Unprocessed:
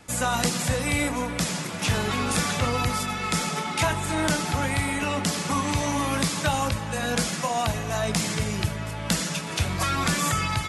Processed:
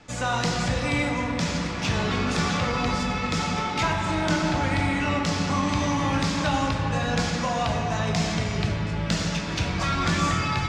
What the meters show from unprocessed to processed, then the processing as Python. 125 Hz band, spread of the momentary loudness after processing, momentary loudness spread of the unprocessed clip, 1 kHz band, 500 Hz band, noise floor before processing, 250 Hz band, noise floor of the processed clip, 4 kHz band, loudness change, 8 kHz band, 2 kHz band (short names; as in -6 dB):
+2.0 dB, 3 LU, 4 LU, +1.0 dB, +0.5 dB, -32 dBFS, +2.5 dB, -29 dBFS, -0.5 dB, +0.5 dB, -7.0 dB, +0.5 dB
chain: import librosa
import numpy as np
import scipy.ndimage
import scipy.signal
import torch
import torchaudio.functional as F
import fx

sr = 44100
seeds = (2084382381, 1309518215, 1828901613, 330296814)

p1 = scipy.signal.sosfilt(scipy.signal.butter(4, 6300.0, 'lowpass', fs=sr, output='sos'), x)
p2 = 10.0 ** (-26.0 / 20.0) * np.tanh(p1 / 10.0 ** (-26.0 / 20.0))
p3 = p1 + F.gain(torch.from_numpy(p2), -8.5).numpy()
p4 = fx.room_shoebox(p3, sr, seeds[0], volume_m3=180.0, walls='hard', distance_m=0.39)
y = F.gain(torch.from_numpy(p4), -3.5).numpy()